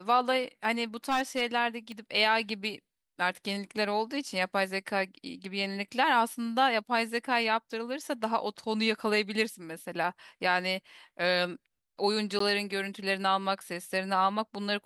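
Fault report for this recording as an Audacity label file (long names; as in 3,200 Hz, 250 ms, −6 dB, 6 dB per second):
1.090000	1.420000	clipping −22.5 dBFS
1.920000	1.920000	click −29 dBFS
12.390000	12.400000	drop-out 14 ms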